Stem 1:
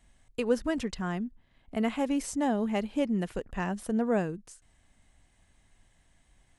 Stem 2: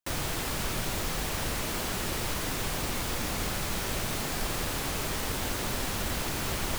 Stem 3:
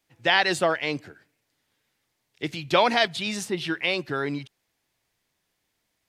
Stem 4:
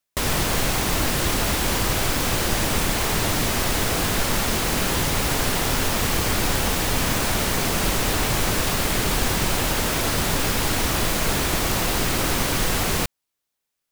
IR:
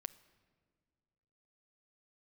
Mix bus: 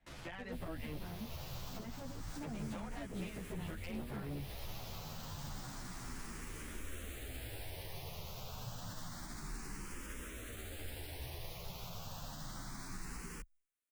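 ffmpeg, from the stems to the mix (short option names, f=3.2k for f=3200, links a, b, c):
-filter_complex "[0:a]lowpass=3k,volume=-4dB[a];[1:a]adynamicsmooth=sensitivity=2.5:basefreq=1.9k,crystalizer=i=5:c=0,volume=-15.5dB[b];[2:a]lowpass=2.2k,acompressor=threshold=-24dB:ratio=6,volume=-0.5dB[c];[3:a]alimiter=limit=-18.5dB:level=0:latency=1,asplit=2[d][e];[e]afreqshift=0.29[f];[d][f]amix=inputs=2:normalize=1,adelay=350,volume=-8dB[g];[a][b][c][g]amix=inputs=4:normalize=0,acrossover=split=170[h][i];[i]acompressor=threshold=-45dB:ratio=4[j];[h][j]amix=inputs=2:normalize=0,aeval=exprs='0.02*(abs(mod(val(0)/0.02+3,4)-2)-1)':c=same,asplit=2[k][l];[l]adelay=11.3,afreqshift=-0.72[m];[k][m]amix=inputs=2:normalize=1"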